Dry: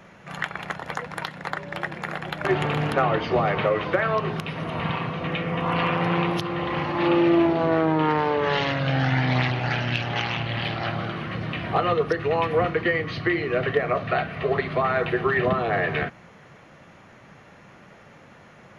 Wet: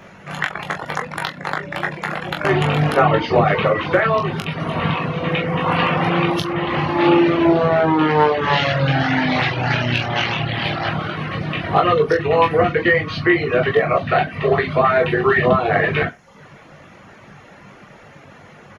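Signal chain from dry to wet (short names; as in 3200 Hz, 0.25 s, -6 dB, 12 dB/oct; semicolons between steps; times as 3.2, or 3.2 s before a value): reverse bouncing-ball echo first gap 20 ms, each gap 1.1×, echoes 5; reverb removal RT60 0.59 s; gain +5.5 dB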